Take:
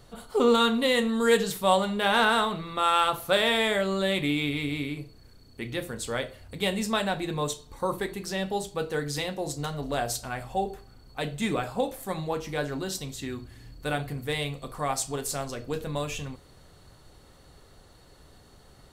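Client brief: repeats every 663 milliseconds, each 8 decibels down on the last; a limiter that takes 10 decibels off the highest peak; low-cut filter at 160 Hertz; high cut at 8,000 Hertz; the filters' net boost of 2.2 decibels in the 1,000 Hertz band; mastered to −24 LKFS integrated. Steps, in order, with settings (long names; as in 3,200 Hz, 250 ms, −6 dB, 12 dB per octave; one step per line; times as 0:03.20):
high-pass filter 160 Hz
low-pass filter 8,000 Hz
parametric band 1,000 Hz +3 dB
brickwall limiter −16 dBFS
repeating echo 663 ms, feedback 40%, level −8 dB
level +5 dB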